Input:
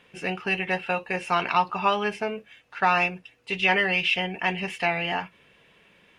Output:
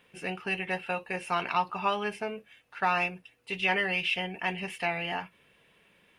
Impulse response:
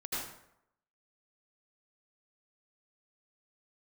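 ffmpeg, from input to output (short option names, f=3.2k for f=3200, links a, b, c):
-af "aexciter=amount=2.7:drive=3.7:freq=8.9k,volume=-5.5dB"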